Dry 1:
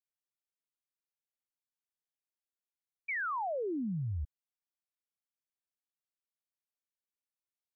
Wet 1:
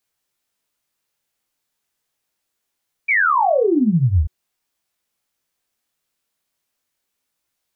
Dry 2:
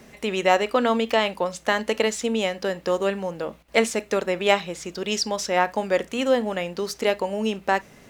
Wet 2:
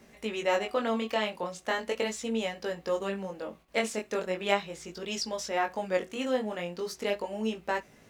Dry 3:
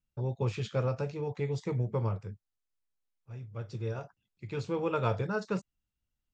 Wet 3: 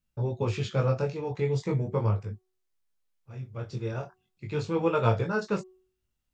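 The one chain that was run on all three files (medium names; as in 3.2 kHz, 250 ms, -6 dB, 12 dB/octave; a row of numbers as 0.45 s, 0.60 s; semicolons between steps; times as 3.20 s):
chorus 0.39 Hz, delay 17.5 ms, depth 6.1 ms; de-hum 371.8 Hz, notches 3; peak normalisation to -9 dBFS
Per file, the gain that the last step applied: +21.5 dB, -5.0 dB, +7.5 dB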